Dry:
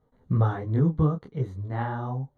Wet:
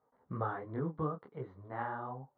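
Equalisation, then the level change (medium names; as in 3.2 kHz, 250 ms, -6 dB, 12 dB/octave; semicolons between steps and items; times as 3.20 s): dynamic bell 840 Hz, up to -6 dB, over -43 dBFS, Q 1.5; band-pass filter 1 kHz, Q 1.2; distance through air 190 m; +1.5 dB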